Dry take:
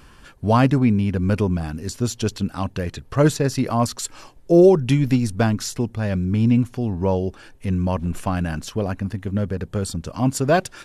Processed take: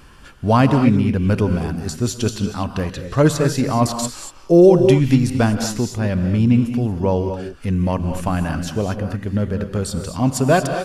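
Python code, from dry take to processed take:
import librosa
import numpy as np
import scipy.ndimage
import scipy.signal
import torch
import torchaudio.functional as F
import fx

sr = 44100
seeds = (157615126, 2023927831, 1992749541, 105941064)

y = fx.rev_gated(x, sr, seeds[0], gate_ms=260, shape='rising', drr_db=7.0)
y = y * 10.0 ** (2.0 / 20.0)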